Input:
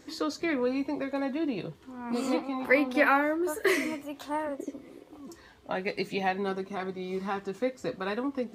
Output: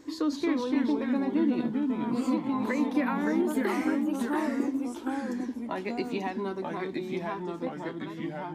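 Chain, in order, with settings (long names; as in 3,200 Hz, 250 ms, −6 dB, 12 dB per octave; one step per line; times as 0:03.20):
fade-out on the ending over 2.03 s
downward compressor, threshold −28 dBFS, peak gain reduction 10.5 dB
hollow resonant body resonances 300/1,000 Hz, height 11 dB, ringing for 35 ms
delay with pitch and tempo change per echo 236 ms, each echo −2 semitones, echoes 2
level −3 dB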